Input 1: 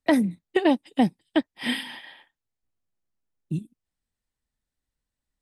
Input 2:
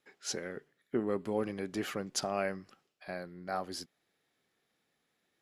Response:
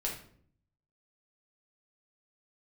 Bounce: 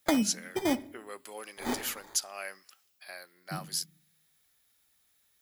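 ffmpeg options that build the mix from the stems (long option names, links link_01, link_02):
-filter_complex "[0:a]highpass=57,equalizer=frequency=4200:width=6.6:gain=12,acrusher=samples=16:mix=1:aa=0.000001,volume=0dB,asplit=3[link_01][link_02][link_03];[link_01]atrim=end=0.83,asetpts=PTS-STARTPTS,afade=type=out:start_time=0.826:duration=0.004:curve=hsin[link_04];[link_02]atrim=start=0.83:end=1.48,asetpts=PTS-STARTPTS,volume=0[link_05];[link_03]atrim=start=1.48,asetpts=PTS-STARTPTS,afade=type=in:duration=0.004:curve=hsin[link_06];[link_04][link_05][link_06]concat=n=3:v=0:a=1,asplit=2[link_07][link_08];[link_08]volume=-21.5dB[link_09];[1:a]highpass=frequency=1200:poles=1,aemphasis=mode=production:type=riaa,volume=0dB,asplit=2[link_10][link_11];[link_11]apad=whole_len=238844[link_12];[link_07][link_12]sidechaincompress=threshold=-50dB:ratio=8:attack=16:release=334[link_13];[2:a]atrim=start_sample=2205[link_14];[link_09][link_14]afir=irnorm=-1:irlink=0[link_15];[link_13][link_10][link_15]amix=inputs=3:normalize=0,alimiter=limit=-16dB:level=0:latency=1:release=365"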